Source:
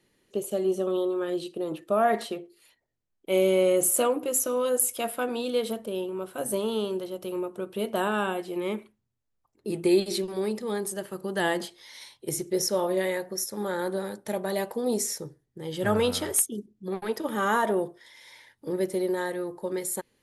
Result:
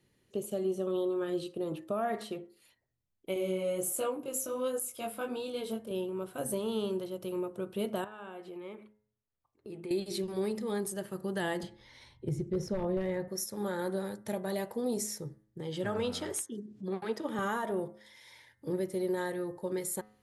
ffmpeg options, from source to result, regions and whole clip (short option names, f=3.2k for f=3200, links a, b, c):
-filter_complex "[0:a]asettb=1/sr,asplit=3[a][b][c];[a]atrim=end=3.344[d];[b]atrim=start=3.34:end=5.91,asetpts=PTS-STARTPTS,afade=t=in:d=0.004:c=qsin,afade=t=out:st=2.566:d=0.004:c=qsin,bandreject=f=1.9k:w=17,flanger=delay=18.5:depth=4.8:speed=1.4[e];[c]atrim=start=5.906[f];[d][e]acrossfade=d=0.004:c1=hsin:c2=qsin[g];[g][f]acrossfade=d=0.004:c1=qsin:c2=hsin,asettb=1/sr,asplit=3[h][i][j];[h]atrim=end=8.044[k];[i]atrim=start=8.04:end=9.91,asetpts=PTS-STARTPTS,afade=t=in:d=0.004:c=qsin,afade=t=out:st=1.866:d=0.004:c=qsin,bass=f=250:g=-8,treble=f=4k:g=-10,acompressor=threshold=-40dB:ratio=2.5:attack=3.2:release=140:knee=1:detection=peak[l];[j]atrim=start=9.906[m];[k][l]acrossfade=d=0.004:c1=hsin:c2=qsin[n];[n][m]acrossfade=d=0.004:c1=qsin:c2=hsin,asettb=1/sr,asplit=3[o][p][q];[o]atrim=end=11.634[r];[p]atrim=start=11.63:end=13.28,asetpts=PTS-STARTPTS,afade=t=in:d=0.004:c=qsin,afade=t=out:st=1.646:d=0.004:c=qsin,aeval=exprs='0.106*(abs(mod(val(0)/0.106+3,4)-2)-1)':c=same,aemphasis=mode=reproduction:type=riaa[s];[q]atrim=start=13.276[t];[r][s]acrossfade=d=0.004:c1=hsin:c2=qsin[u];[u][t]acrossfade=d=0.004:c1=qsin:c2=hsin,asettb=1/sr,asplit=3[v][w][x];[v]atrim=end=15.604[y];[w]atrim=start=15.6:end=17.39,asetpts=PTS-STARTPTS,afade=t=in:d=0.004:c=qsin,afade=t=out:st=1.786:d=0.004:c=qsin,acompressor=mode=upward:threshold=-30dB:ratio=2.5:attack=3.2:release=140:knee=2.83:detection=peak,highpass=170,lowpass=7.8k[z];[x]atrim=start=17.386[aa];[y][z]acrossfade=d=0.004:c1=hsin:c2=qsin[ab];[ab][aa]acrossfade=d=0.004:c1=qsin:c2=hsin,equalizer=f=97:t=o:w=1.7:g=10.5,bandreject=f=106:t=h:w=4,bandreject=f=212:t=h:w=4,bandreject=f=318:t=h:w=4,bandreject=f=424:t=h:w=4,bandreject=f=530:t=h:w=4,bandreject=f=636:t=h:w=4,bandreject=f=742:t=h:w=4,bandreject=f=848:t=h:w=4,bandreject=f=954:t=h:w=4,bandreject=f=1.06k:t=h:w=4,bandreject=f=1.166k:t=h:w=4,bandreject=f=1.272k:t=h:w=4,bandreject=f=1.378k:t=h:w=4,bandreject=f=1.484k:t=h:w=4,bandreject=f=1.59k:t=h:w=4,bandreject=f=1.696k:t=h:w=4,bandreject=f=1.802k:t=h:w=4,bandreject=f=1.908k:t=h:w=4,bandreject=f=2.014k:t=h:w=4,bandreject=f=2.12k:t=h:w=4,alimiter=limit=-18.5dB:level=0:latency=1:release=340,volume=-5dB"